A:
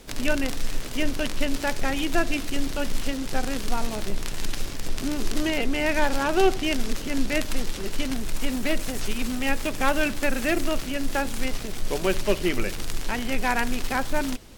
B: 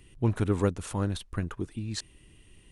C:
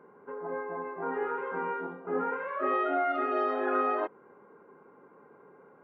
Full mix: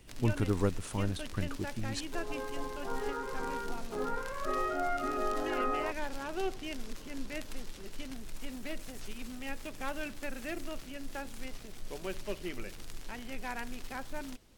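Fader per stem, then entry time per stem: -15.0, -4.0, -5.0 dB; 0.00, 0.00, 1.85 s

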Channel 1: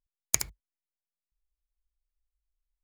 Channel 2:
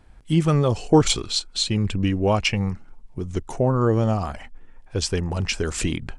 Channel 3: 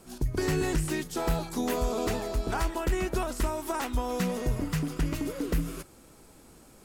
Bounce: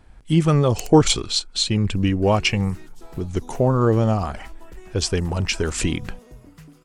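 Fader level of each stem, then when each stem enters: -9.0, +2.0, -15.5 dB; 0.45, 0.00, 1.85 s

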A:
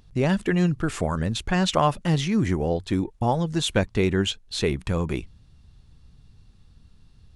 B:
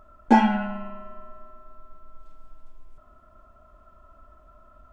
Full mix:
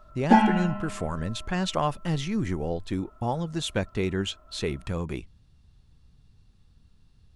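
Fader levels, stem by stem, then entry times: -5.5, -1.0 dB; 0.00, 0.00 s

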